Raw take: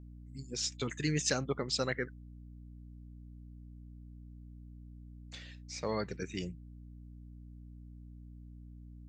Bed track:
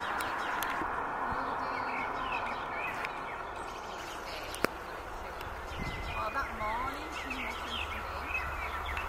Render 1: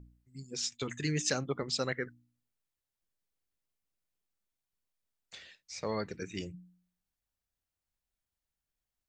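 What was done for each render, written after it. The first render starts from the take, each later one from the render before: de-hum 60 Hz, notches 5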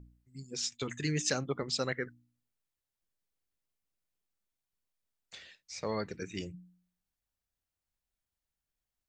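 no audible change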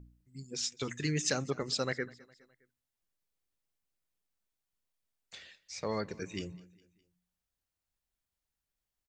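feedback delay 206 ms, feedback 51%, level -23 dB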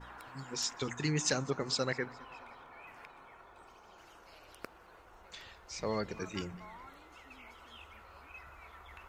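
add bed track -16.5 dB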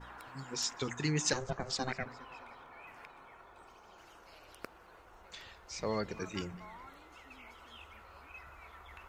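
1.33–2.06 s: ring modulator 260 Hz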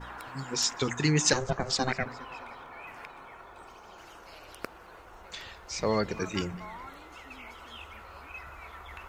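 trim +7.5 dB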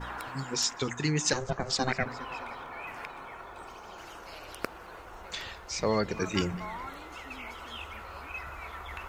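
gain riding within 4 dB 0.5 s

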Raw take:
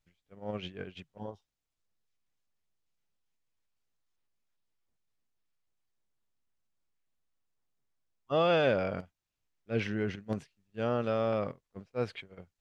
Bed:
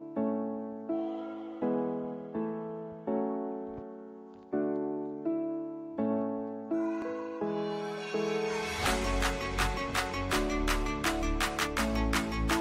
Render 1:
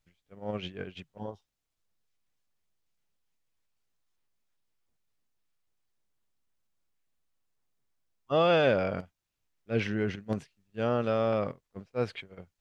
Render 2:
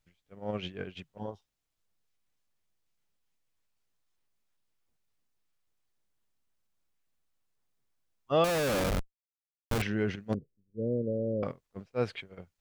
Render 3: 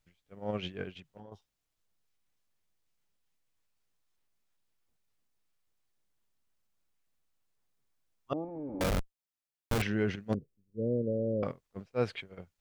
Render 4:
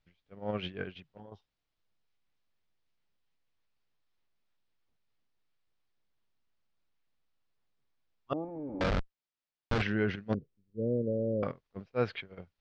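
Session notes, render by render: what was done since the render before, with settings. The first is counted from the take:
trim +2.5 dB
8.44–9.82 s: Schmitt trigger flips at -30.5 dBFS; 10.34–11.43 s: Chebyshev low-pass 520 Hz, order 5
0.92–1.32 s: compression 10:1, threshold -45 dBFS; 8.33–8.81 s: cascade formant filter u
dynamic bell 1.5 kHz, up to +4 dB, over -51 dBFS, Q 1.9; low-pass 4.9 kHz 24 dB/octave

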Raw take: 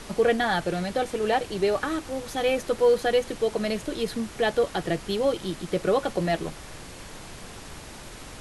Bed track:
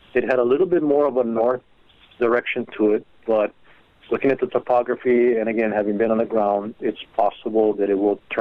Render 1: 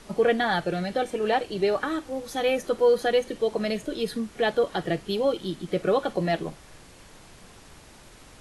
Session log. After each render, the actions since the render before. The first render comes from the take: noise print and reduce 8 dB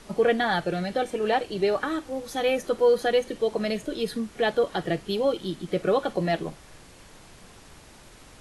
no audible change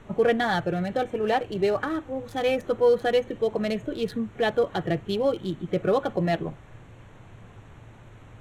local Wiener filter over 9 samples; peaking EQ 110 Hz +14.5 dB 0.55 oct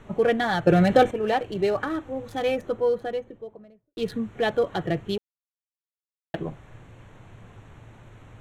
0.67–1.11 s: gain +9.5 dB; 2.22–3.97 s: studio fade out; 5.18–6.34 s: mute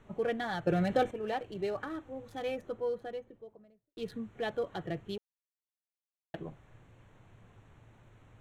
trim -11 dB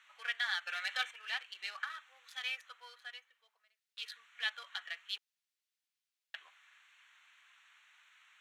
high-pass 1.3 kHz 24 dB/octave; peaking EQ 3.3 kHz +9 dB 2.4 oct

